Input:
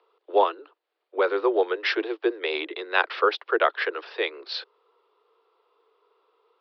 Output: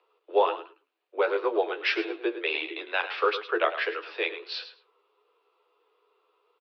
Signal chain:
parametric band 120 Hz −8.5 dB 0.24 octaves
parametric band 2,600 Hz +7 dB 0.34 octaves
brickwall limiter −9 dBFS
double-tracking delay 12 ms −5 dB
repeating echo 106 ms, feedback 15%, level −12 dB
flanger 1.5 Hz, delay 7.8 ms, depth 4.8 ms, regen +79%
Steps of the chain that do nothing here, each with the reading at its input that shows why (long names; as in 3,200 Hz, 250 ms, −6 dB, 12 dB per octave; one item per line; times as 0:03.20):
parametric band 120 Hz: nothing at its input below 270 Hz